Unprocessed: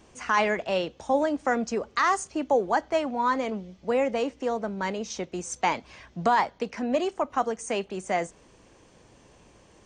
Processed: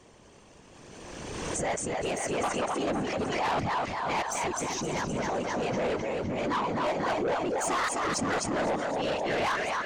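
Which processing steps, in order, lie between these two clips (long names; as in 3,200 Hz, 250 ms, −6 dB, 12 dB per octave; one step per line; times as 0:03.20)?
played backwards from end to start
feedback echo with a high-pass in the loop 257 ms, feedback 59%, high-pass 350 Hz, level −4.5 dB
random phases in short frames
soft clipping −25 dBFS, distortion −9 dB
background raised ahead of every attack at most 25 dB per second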